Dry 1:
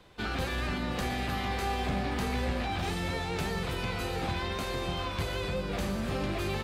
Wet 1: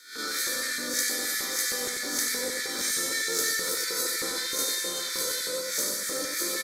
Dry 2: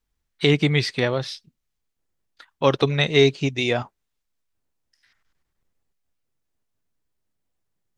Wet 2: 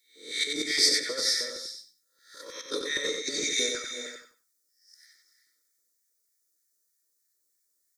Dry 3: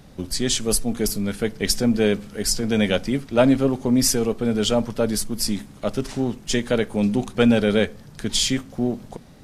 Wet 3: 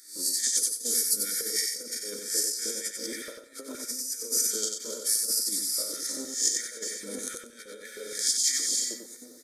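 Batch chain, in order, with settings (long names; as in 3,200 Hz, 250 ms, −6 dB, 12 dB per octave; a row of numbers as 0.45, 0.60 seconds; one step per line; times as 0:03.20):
peak hold with a rise ahead of every peak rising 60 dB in 0.49 s
parametric band 2,700 Hz −7 dB 0.25 octaves
phaser with its sweep stopped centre 570 Hz, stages 8
comb filter 2.2 ms, depth 57%
reverb whose tail is shaped and stops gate 410 ms rising, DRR 10.5 dB
compressor whose output falls as the input rises −25 dBFS, ratio −0.5
auto-filter high-pass square 3.2 Hz 780–1,800 Hz
drawn EQ curve 140 Hz 0 dB, 360 Hz +7 dB, 730 Hz −26 dB, 6,000 Hz +5 dB
repeating echo 93 ms, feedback 20%, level −5 dB
loudness normalisation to −27 LKFS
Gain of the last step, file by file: +13.0, +3.5, −1.5 decibels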